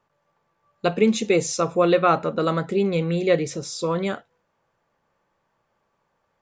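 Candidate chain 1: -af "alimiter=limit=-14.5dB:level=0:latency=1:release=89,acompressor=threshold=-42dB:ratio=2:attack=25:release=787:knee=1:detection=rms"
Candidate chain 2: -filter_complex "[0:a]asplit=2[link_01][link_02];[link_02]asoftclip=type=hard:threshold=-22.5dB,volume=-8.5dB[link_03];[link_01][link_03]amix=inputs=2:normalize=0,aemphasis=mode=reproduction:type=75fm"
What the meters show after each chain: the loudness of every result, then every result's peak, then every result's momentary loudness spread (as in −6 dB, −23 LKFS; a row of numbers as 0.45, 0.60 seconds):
−37.0, −20.5 LKFS; −22.5, −6.0 dBFS; 5, 9 LU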